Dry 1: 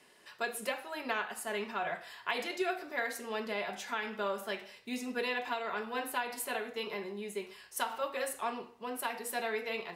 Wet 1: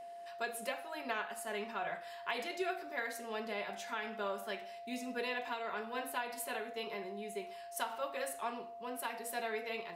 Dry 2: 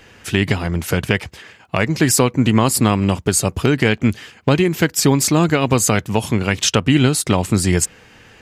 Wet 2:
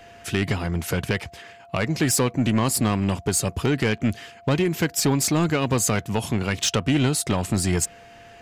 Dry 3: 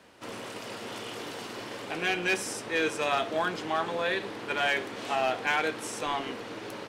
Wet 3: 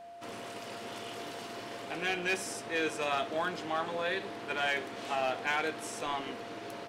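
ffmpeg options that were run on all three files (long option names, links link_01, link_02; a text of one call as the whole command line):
ffmpeg -i in.wav -af "asoftclip=type=tanh:threshold=-9.5dB,aeval=exprs='val(0)+0.00794*sin(2*PI*690*n/s)':channel_layout=same,volume=-4dB" out.wav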